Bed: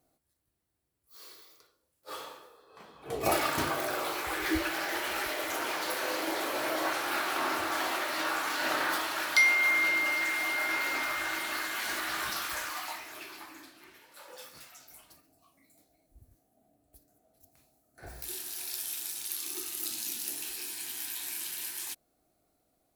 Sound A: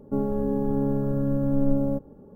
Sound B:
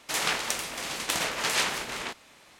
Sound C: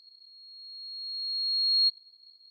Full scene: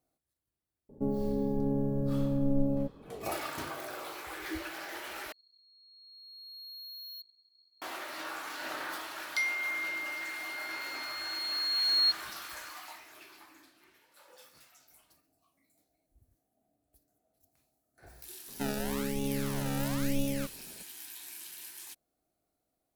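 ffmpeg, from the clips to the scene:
ffmpeg -i bed.wav -i cue0.wav -i cue1.wav -i cue2.wav -filter_complex "[1:a]asplit=2[link_01][link_02];[3:a]asplit=2[link_03][link_04];[0:a]volume=-8.5dB[link_05];[link_01]equalizer=frequency=1300:width=3.4:gain=-15[link_06];[link_03]asoftclip=type=tanh:threshold=-33.5dB[link_07];[link_02]acrusher=samples=28:mix=1:aa=0.000001:lfo=1:lforange=28:lforate=1[link_08];[link_05]asplit=2[link_09][link_10];[link_09]atrim=end=5.324[link_11];[link_07]atrim=end=2.5,asetpts=PTS-STARTPTS,volume=-11dB[link_12];[link_10]atrim=start=7.816[link_13];[link_06]atrim=end=2.35,asetpts=PTS-STARTPTS,volume=-5.5dB,afade=type=in:duration=0.004:curve=hsin,afade=type=out:start_time=2.346:duration=0.004:curve=hsin,adelay=890[link_14];[link_04]atrim=end=2.5,asetpts=PTS-STARTPTS,volume=-2dB,afade=type=in:duration=0.004:curve=hsin,afade=type=out:start_time=2.496:duration=0.004:curve=hsin,adelay=10220[link_15];[link_08]atrim=end=2.35,asetpts=PTS-STARTPTS,volume=-8.5dB,afade=type=in:duration=0.004:curve=hsin,afade=type=out:start_time=2.346:duration=0.004:curve=hsin,adelay=18480[link_16];[link_11][link_12]acrossfade=duration=0.004:curve1=hsin:curve2=hsin[link_17];[link_17][link_13]acrossfade=duration=0.004:curve1=hsin:curve2=hsin[link_18];[link_18][link_14][link_15][link_16]amix=inputs=4:normalize=0" out.wav

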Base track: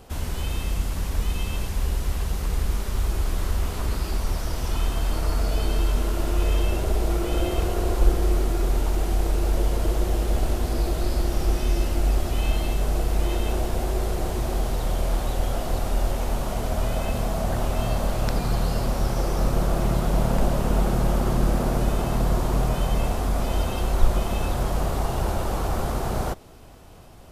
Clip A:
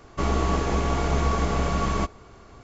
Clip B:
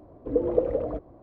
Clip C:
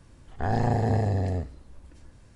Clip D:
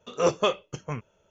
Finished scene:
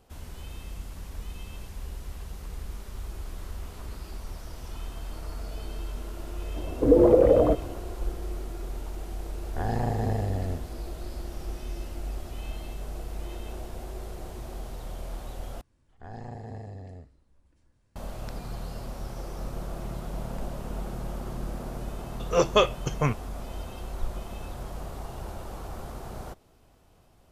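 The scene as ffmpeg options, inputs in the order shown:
ffmpeg -i bed.wav -i cue0.wav -i cue1.wav -i cue2.wav -i cue3.wav -filter_complex "[3:a]asplit=2[link_01][link_02];[0:a]volume=-13dB[link_03];[2:a]alimiter=level_in=17dB:limit=-1dB:release=50:level=0:latency=1[link_04];[4:a]dynaudnorm=framelen=180:gausssize=3:maxgain=13.5dB[link_05];[link_03]asplit=2[link_06][link_07];[link_06]atrim=end=15.614[link_08];[link_02]atrim=end=2.35,asetpts=PTS-STARTPTS,volume=-16dB[link_09];[link_07]atrim=start=17.956[link_10];[link_04]atrim=end=1.22,asetpts=PTS-STARTPTS,volume=-6.5dB,afade=type=in:duration=0.004:curve=hsin,afade=type=out:start_time=1.216:duration=0.004:curve=hsin,adelay=6560[link_11];[link_01]atrim=end=2.35,asetpts=PTS-STARTPTS,volume=-4dB,afade=type=in:duration=0.004:curve=hsin,afade=type=out:start_time=2.346:duration=0.004:curve=hsin,adelay=9160[link_12];[link_05]atrim=end=1.3,asetpts=PTS-STARTPTS,volume=-5dB,afade=type=in:duration=0.004:curve=hsin,afade=type=out:start_time=1.296:duration=0.004:curve=hsin,adelay=22130[link_13];[link_08][link_09]acrossfade=duration=0.004:curve1=hsin:curve2=hsin[link_14];[link_14][link_10]acrossfade=duration=0.004:curve1=hsin:curve2=hsin[link_15];[link_15][link_11][link_12][link_13]amix=inputs=4:normalize=0" out.wav

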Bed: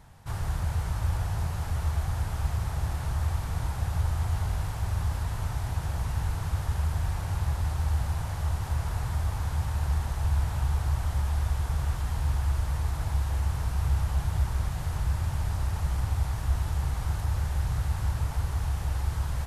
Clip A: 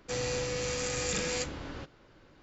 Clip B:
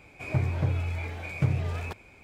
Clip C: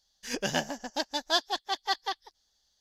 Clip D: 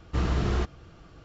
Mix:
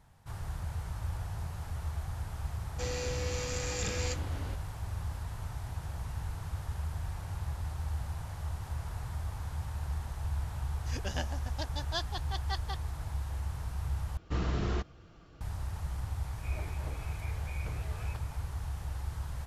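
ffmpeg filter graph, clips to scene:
ffmpeg -i bed.wav -i cue0.wav -i cue1.wav -i cue2.wav -i cue3.wav -filter_complex "[0:a]volume=-8.5dB[link_01];[3:a]lowpass=8600[link_02];[2:a]highpass=380[link_03];[link_01]asplit=2[link_04][link_05];[link_04]atrim=end=14.174[link_06];[4:a]atrim=end=1.24,asetpts=PTS-STARTPTS,volume=-5.5dB[link_07];[link_05]atrim=start=15.406[link_08];[1:a]atrim=end=2.42,asetpts=PTS-STARTPTS,volume=-4dB,afade=type=in:duration=0.004:curve=hsin,afade=type=out:start_time=2.416:duration=0.004:curve=hsin,adelay=2700[link_09];[link_02]atrim=end=2.8,asetpts=PTS-STARTPTS,volume=-9dB,afade=type=in:duration=0.004:curve=hsin,afade=type=out:start_time=2.796:duration=0.004:curve=hsin,adelay=10620[link_10];[link_03]atrim=end=2.23,asetpts=PTS-STARTPTS,volume=-10dB,afade=type=in:duration=0.004:curve=hsin,afade=type=out:start_time=2.226:duration=0.004:curve=hsin,adelay=16240[link_11];[link_06][link_07]acrossfade=duration=0.004:curve1=hsin:curve2=hsin[link_12];[link_12][link_08]acrossfade=duration=0.004:curve1=hsin:curve2=hsin[link_13];[link_13][link_09][link_10][link_11]amix=inputs=4:normalize=0" out.wav

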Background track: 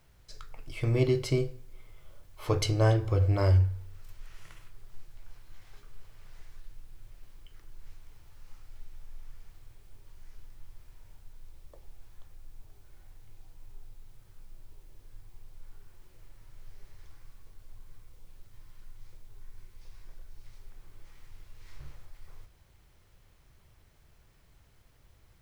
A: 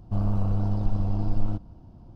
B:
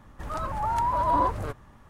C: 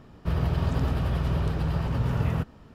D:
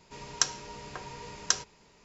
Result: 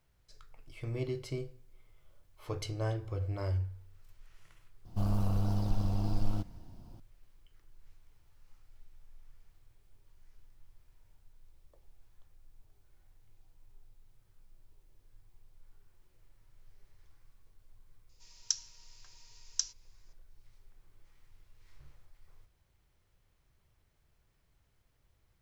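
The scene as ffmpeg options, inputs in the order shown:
ffmpeg -i bed.wav -i cue0.wav -i cue1.wav -i cue2.wav -i cue3.wav -filter_complex "[0:a]volume=-10.5dB[link_01];[1:a]crystalizer=i=5.5:c=0[link_02];[4:a]bandpass=frequency=5600:width_type=q:width=2.3:csg=0[link_03];[link_02]atrim=end=2.15,asetpts=PTS-STARTPTS,volume=-5.5dB,afade=type=in:duration=0.004:curve=hsin,afade=type=out:start_time=2.146:duration=0.004:curve=hsin,adelay=213885S[link_04];[link_03]atrim=end=2.04,asetpts=PTS-STARTPTS,volume=-4.5dB,afade=type=in:duration=0.004:curve=hsin,afade=type=out:start_time=2.036:duration=0.004:curve=hsin,adelay=18090[link_05];[link_01][link_04][link_05]amix=inputs=3:normalize=0" out.wav

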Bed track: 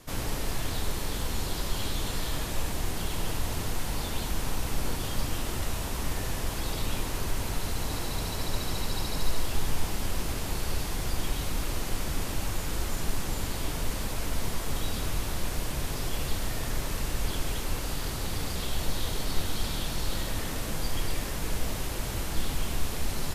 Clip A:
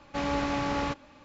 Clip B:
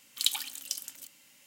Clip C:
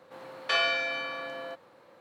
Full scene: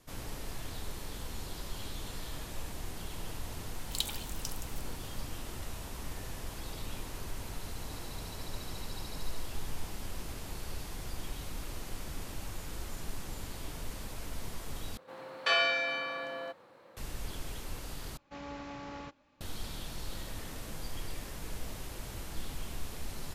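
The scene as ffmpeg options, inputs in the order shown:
ffmpeg -i bed.wav -i cue0.wav -i cue1.wav -i cue2.wav -filter_complex "[0:a]volume=-10dB,asplit=3[link_01][link_02][link_03];[link_01]atrim=end=14.974[link_04];[3:a]atrim=end=2,asetpts=PTS-STARTPTS,volume=-1dB[link_05];[link_02]atrim=start=16.966:end=18.174[link_06];[1:a]atrim=end=1.24,asetpts=PTS-STARTPTS,volume=-14.5dB[link_07];[link_03]atrim=start=19.406[link_08];[2:a]atrim=end=1.46,asetpts=PTS-STARTPTS,volume=-7dB,afade=type=in:duration=0.004:curve=hsin,afade=type=out:start_time=1.456:duration=0.004:curve=hsin,adelay=3740[link_09];[link_04][link_05]acrossfade=duration=0.004:curve1=hsin:curve2=hsin[link_10];[link_10][link_06]acrossfade=duration=0.004:curve1=hsin:curve2=hsin[link_11];[link_11][link_07]acrossfade=duration=0.004:curve1=hsin:curve2=hsin[link_12];[link_12][link_08]acrossfade=duration=0.004:curve1=hsin:curve2=hsin[link_13];[link_13][link_09]amix=inputs=2:normalize=0" out.wav

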